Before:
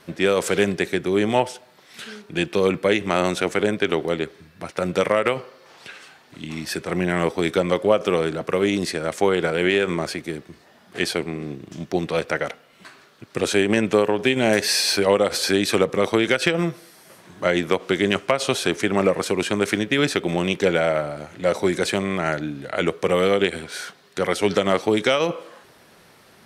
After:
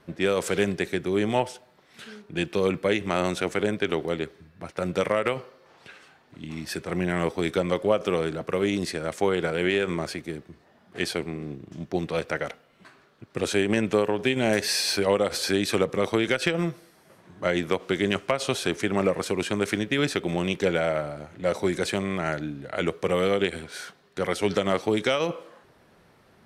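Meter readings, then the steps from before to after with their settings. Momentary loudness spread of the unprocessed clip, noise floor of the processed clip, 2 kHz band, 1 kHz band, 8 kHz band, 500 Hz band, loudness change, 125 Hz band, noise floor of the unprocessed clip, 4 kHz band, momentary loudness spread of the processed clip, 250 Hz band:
13 LU, -59 dBFS, -5.0 dB, -5.0 dB, -5.0 dB, -4.5 dB, -4.5 dB, -3.0 dB, -53 dBFS, -5.0 dB, 11 LU, -4.0 dB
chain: low shelf 92 Hz +8 dB; mismatched tape noise reduction decoder only; gain -5 dB

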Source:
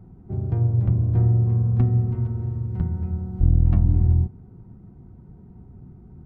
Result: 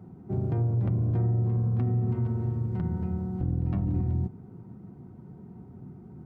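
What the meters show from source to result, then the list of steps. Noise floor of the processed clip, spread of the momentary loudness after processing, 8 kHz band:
-48 dBFS, 20 LU, n/a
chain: HPF 140 Hz 12 dB/oct; limiter -23 dBFS, peak gain reduction 10 dB; gain +3 dB

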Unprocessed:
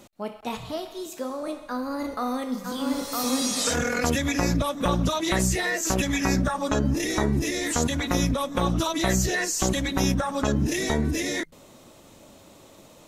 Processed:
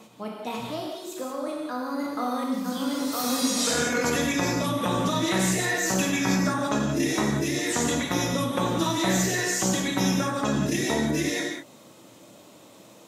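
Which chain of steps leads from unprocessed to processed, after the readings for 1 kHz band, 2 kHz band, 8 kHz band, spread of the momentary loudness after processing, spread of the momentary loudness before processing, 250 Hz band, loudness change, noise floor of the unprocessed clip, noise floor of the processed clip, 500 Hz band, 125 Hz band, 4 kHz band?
+0.5 dB, +0.5 dB, +0.5 dB, 9 LU, 9 LU, +0.5 dB, 0.0 dB, -51 dBFS, -51 dBFS, 0.0 dB, -2.5 dB, +0.5 dB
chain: HPF 110 Hz 24 dB/oct; reverse echo 0.526 s -19 dB; non-linear reverb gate 0.21 s flat, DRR 0 dB; gain -2.5 dB

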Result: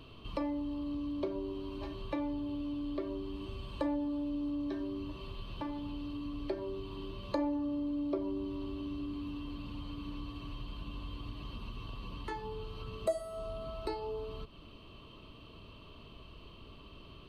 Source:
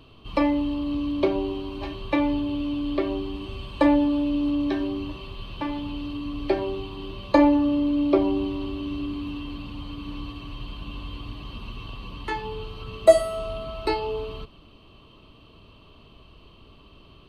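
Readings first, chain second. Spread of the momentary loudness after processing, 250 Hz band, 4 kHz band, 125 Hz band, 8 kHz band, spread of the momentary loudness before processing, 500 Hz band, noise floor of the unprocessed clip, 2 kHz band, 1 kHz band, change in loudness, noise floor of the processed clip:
18 LU, -12.5 dB, -11.5 dB, -8.0 dB, n/a, 18 LU, -14.5 dB, -52 dBFS, -16.0 dB, -14.0 dB, -13.5 dB, -53 dBFS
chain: notch 780 Hz, Q 12; dynamic EQ 2500 Hz, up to -8 dB, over -48 dBFS, Q 1.2; compressor 2:1, threshold -41 dBFS, peak gain reduction 17.5 dB; gain -1.5 dB

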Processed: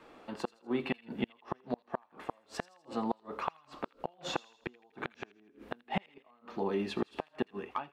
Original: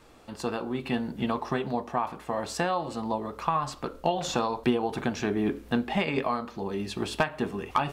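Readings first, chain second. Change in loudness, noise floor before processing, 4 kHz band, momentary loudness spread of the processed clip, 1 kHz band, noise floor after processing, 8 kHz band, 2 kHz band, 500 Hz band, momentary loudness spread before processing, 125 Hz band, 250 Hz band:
-9.0 dB, -50 dBFS, -9.0 dB, 12 LU, -10.5 dB, -69 dBFS, -13.5 dB, -9.5 dB, -8.5 dB, 6 LU, -11.5 dB, -9.0 dB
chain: ending faded out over 0.58 s; three-band isolator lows -16 dB, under 180 Hz, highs -14 dB, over 3500 Hz; flipped gate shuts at -20 dBFS, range -36 dB; on a send: thin delay 82 ms, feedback 52%, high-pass 2200 Hz, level -17.5 dB; on the sum: gain +1 dB

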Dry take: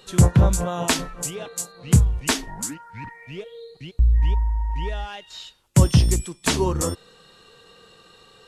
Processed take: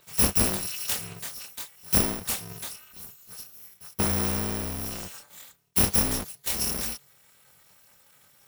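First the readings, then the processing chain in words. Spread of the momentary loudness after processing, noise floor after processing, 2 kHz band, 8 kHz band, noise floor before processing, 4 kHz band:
20 LU, -60 dBFS, -5.0 dB, -0.5 dB, -54 dBFS, -3.0 dB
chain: FFT order left unsorted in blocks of 256 samples; chorus voices 4, 0.25 Hz, delay 25 ms, depth 4 ms; polarity switched at an audio rate 140 Hz; gain -4 dB

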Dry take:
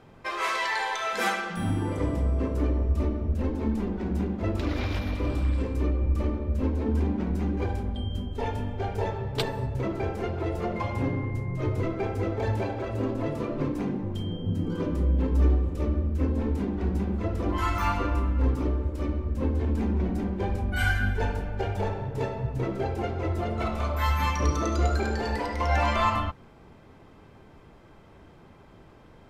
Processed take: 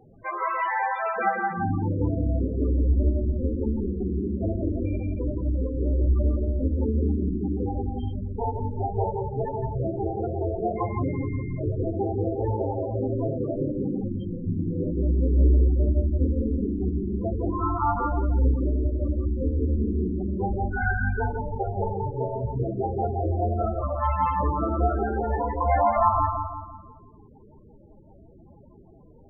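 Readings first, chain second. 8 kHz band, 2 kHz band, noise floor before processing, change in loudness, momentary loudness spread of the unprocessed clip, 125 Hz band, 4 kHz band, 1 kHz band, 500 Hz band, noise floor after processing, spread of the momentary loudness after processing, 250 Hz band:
under -35 dB, -2.0 dB, -52 dBFS, +2.0 dB, 5 LU, +1.5 dB, under -20 dB, +4.5 dB, +3.0 dB, -51 dBFS, 6 LU, +1.5 dB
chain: air absorption 220 m; darkening echo 0.171 s, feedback 48%, low-pass 3200 Hz, level -5 dB; loudest bins only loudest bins 16; bell 750 Hz +7.5 dB 1.1 oct

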